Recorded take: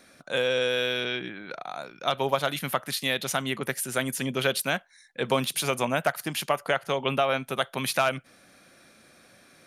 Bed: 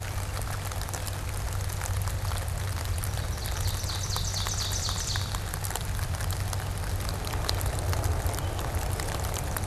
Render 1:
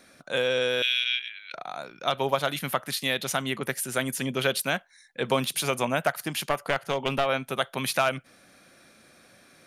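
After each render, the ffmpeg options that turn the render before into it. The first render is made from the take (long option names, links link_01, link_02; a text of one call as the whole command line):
ffmpeg -i in.wav -filter_complex "[0:a]asettb=1/sr,asplit=3[link_01][link_02][link_03];[link_01]atrim=end=0.824[link_04];[link_02]atrim=start=0.82:end=1.54,asetpts=PTS-STARTPTS,afade=type=in:duration=0.004:curve=qsin,afade=type=out:start_time=0.716:duration=0.004:curve=qsin,highpass=frequency=2700:width_type=q:width=2.5[link_05];[link_03]atrim=start=1.536[link_06];[link_04][link_05]acrossfade=duration=0.004:curve1=hsin:curve2=qsin[link_07];[link_07][link_06]acrossfade=duration=0.004:curve1=qsin:curve2=hsin,asplit=3[link_08][link_09][link_10];[link_08]afade=type=out:start_time=6.44:duration=0.02[link_11];[link_09]aeval=exprs='clip(val(0),-1,0.0447)':channel_layout=same,afade=type=in:start_time=6.44:duration=0.02,afade=type=out:start_time=7.25:duration=0.02[link_12];[link_10]afade=type=in:start_time=7.25:duration=0.02[link_13];[link_11][link_12][link_13]amix=inputs=3:normalize=0" out.wav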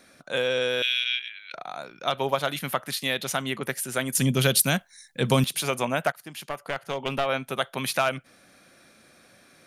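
ffmpeg -i in.wav -filter_complex "[0:a]asettb=1/sr,asplit=3[link_01][link_02][link_03];[link_01]atrim=end=4.154[link_04];[link_02]atrim=start=4.15:end=5.44,asetpts=PTS-STARTPTS,afade=type=in:duration=0.004:curve=qsin,afade=type=out:start_time=1.286:duration=0.004:curve=qsin,bass=frequency=250:gain=13,treble=frequency=4000:gain=11[link_05];[link_03]atrim=start=5.436[link_06];[link_04][link_05]acrossfade=duration=0.004:curve1=hsin:curve2=qsin[link_07];[link_07][link_06]acrossfade=duration=0.004:curve1=qsin:curve2=hsin,asplit=2[link_08][link_09];[link_08]atrim=end=6.12,asetpts=PTS-STARTPTS,afade=type=out:start_time=6.116:duration=0.004:curve=hsin:silence=0.223872[link_10];[link_09]atrim=start=6.12,asetpts=PTS-STARTPTS,afade=type=in:duration=1.25:silence=0.223872[link_11];[link_10][link_11]concat=n=2:v=0:a=1" out.wav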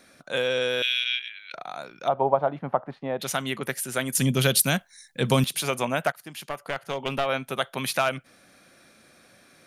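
ffmpeg -i in.wav -filter_complex "[0:a]asplit=3[link_01][link_02][link_03];[link_01]afade=type=out:start_time=2.07:duration=0.02[link_04];[link_02]lowpass=frequency=820:width_type=q:width=2.3,afade=type=in:start_time=2.07:duration=0.02,afade=type=out:start_time=3.19:duration=0.02[link_05];[link_03]afade=type=in:start_time=3.19:duration=0.02[link_06];[link_04][link_05][link_06]amix=inputs=3:normalize=0" out.wav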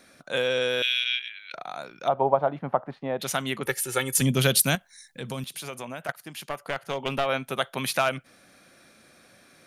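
ffmpeg -i in.wav -filter_complex "[0:a]asettb=1/sr,asplit=3[link_01][link_02][link_03];[link_01]atrim=end=3.654[link_04];[link_02]atrim=start=3.65:end=4.21,asetpts=PTS-STARTPTS,afade=type=in:duration=0.004:curve=qsin,afade=type=out:start_time=0.556:duration=0.004:curve=qsin,aecho=1:1:2.3:0.76,atrim=end_sample=24696[link_05];[link_03]atrim=start=4.206[link_06];[link_04][link_05]acrossfade=duration=0.004:curve1=hsin:curve2=qsin[link_07];[link_07][link_06]acrossfade=duration=0.004:curve1=qsin:curve2=hsin,asettb=1/sr,asplit=3[link_08][link_09][link_10];[link_08]atrim=end=4.754[link_11];[link_09]atrim=start=4.75:end=6.09,asetpts=PTS-STARTPTS,afade=type=in:duration=0.004:curve=qsin,afade=type=out:start_time=1.336:duration=0.004:curve=qsin,acompressor=threshold=-40dB:ratio=2:attack=3.2:release=140:knee=1:detection=peak[link_12];[link_10]atrim=start=6.086[link_13];[link_11][link_12]acrossfade=duration=0.004:curve1=hsin:curve2=qsin[link_14];[link_14][link_13]acrossfade=duration=0.004:curve1=qsin:curve2=hsin" out.wav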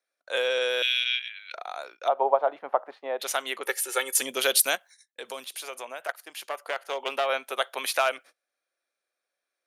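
ffmpeg -i in.wav -af "agate=range=-29dB:threshold=-45dB:ratio=16:detection=peak,highpass=frequency=420:width=0.5412,highpass=frequency=420:width=1.3066" out.wav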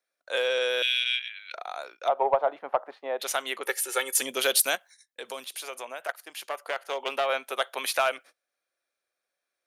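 ffmpeg -i in.wav -af "asoftclip=type=tanh:threshold=-10.5dB" out.wav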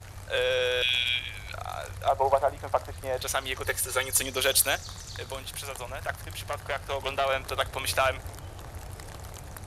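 ffmpeg -i in.wav -i bed.wav -filter_complex "[1:a]volume=-11dB[link_01];[0:a][link_01]amix=inputs=2:normalize=0" out.wav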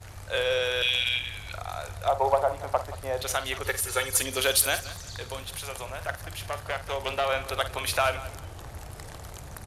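ffmpeg -i in.wav -filter_complex "[0:a]asplit=2[link_01][link_02];[link_02]adelay=49,volume=-12dB[link_03];[link_01][link_03]amix=inputs=2:normalize=0,aecho=1:1:178|356:0.158|0.0396" out.wav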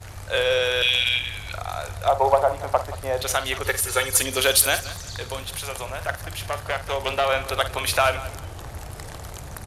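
ffmpeg -i in.wav -af "volume=5dB" out.wav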